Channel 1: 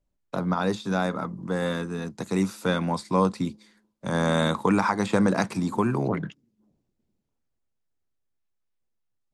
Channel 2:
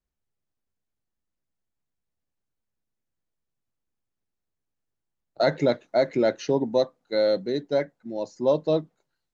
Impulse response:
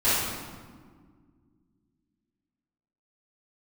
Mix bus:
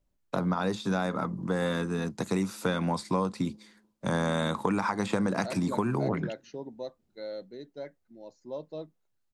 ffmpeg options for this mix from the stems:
-filter_complex "[0:a]acompressor=threshold=0.0501:ratio=5,volume=1.19[s0];[1:a]adelay=50,volume=0.15[s1];[s0][s1]amix=inputs=2:normalize=0"

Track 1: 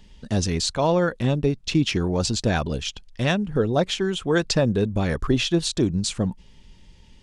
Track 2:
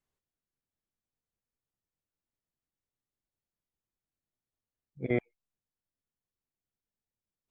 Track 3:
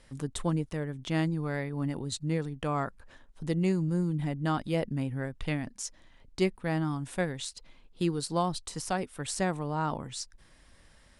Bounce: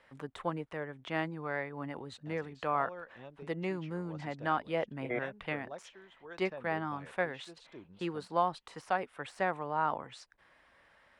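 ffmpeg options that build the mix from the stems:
-filter_complex "[0:a]tremolo=f=0.84:d=0.47,adelay=1950,volume=0.119[s0];[1:a]volume=1.06[s1];[2:a]deesser=0.75,volume=1.33[s2];[s0][s1][s2]amix=inputs=3:normalize=0,highpass=f=130:p=1,acrossover=split=500 2800:gain=0.224 1 0.0891[s3][s4][s5];[s3][s4][s5]amix=inputs=3:normalize=0"

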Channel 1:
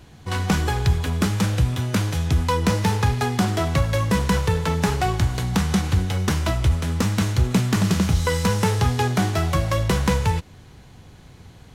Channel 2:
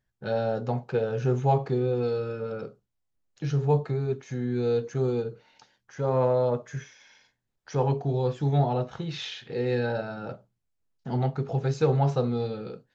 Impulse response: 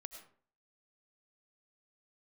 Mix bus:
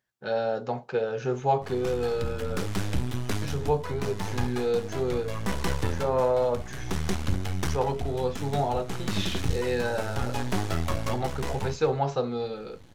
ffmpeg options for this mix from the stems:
-filter_complex "[0:a]aeval=exprs='max(val(0),0)':c=same,flanger=delay=2.1:depth=1.7:regen=-68:speed=1.6:shape=triangular,adelay=1350,volume=1.12,asplit=2[s0][s1];[s1]volume=0.0891[s2];[1:a]highpass=f=450:p=1,volume=1.33,asplit=2[s3][s4];[s4]apad=whole_len=577408[s5];[s0][s5]sidechaincompress=threshold=0.0224:ratio=10:attack=50:release=576[s6];[s2]aecho=0:1:239:1[s7];[s6][s3][s7]amix=inputs=3:normalize=0"

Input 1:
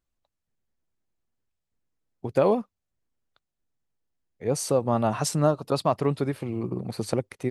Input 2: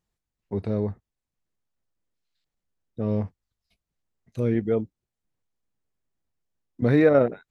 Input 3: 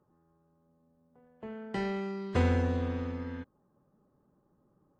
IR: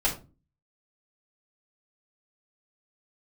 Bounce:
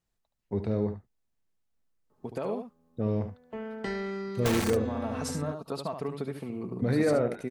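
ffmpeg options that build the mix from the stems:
-filter_complex "[0:a]alimiter=limit=0.188:level=0:latency=1:release=161,volume=0.501,asplit=2[s0][s1];[s1]volume=0.355[s2];[1:a]alimiter=limit=0.168:level=0:latency=1,volume=0.794,asplit=2[s3][s4];[s4]volume=0.316[s5];[2:a]equalizer=f=180:t=o:w=0.47:g=-6.5,aeval=exprs='(mod(11.9*val(0)+1,2)-1)/11.9':c=same,adelay=2100,volume=1.33[s6];[s0][s6]amix=inputs=2:normalize=0,aecho=1:1:4.5:0.46,acompressor=threshold=0.0355:ratio=6,volume=1[s7];[s2][s5]amix=inputs=2:normalize=0,aecho=0:1:73:1[s8];[s3][s7][s8]amix=inputs=3:normalize=0"

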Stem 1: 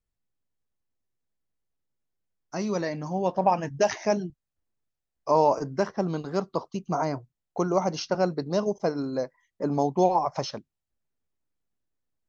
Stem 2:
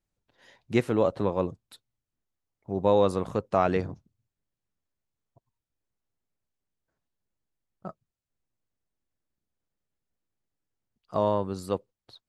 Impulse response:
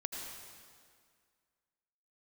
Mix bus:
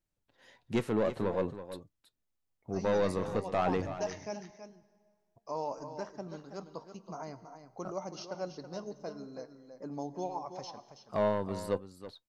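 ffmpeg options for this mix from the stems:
-filter_complex "[0:a]highshelf=f=4800:g=6.5,adelay=200,volume=0.237,asplit=3[s0][s1][s2];[s1]volume=0.251[s3];[s2]volume=0.376[s4];[1:a]asoftclip=type=tanh:threshold=0.106,volume=1.19,asplit=2[s5][s6];[s6]volume=0.251[s7];[2:a]atrim=start_sample=2205[s8];[s3][s8]afir=irnorm=-1:irlink=0[s9];[s4][s7]amix=inputs=2:normalize=0,aecho=0:1:326:1[s10];[s0][s5][s9][s10]amix=inputs=4:normalize=0,flanger=delay=3.1:depth=1.7:regen=82:speed=0.49:shape=triangular"

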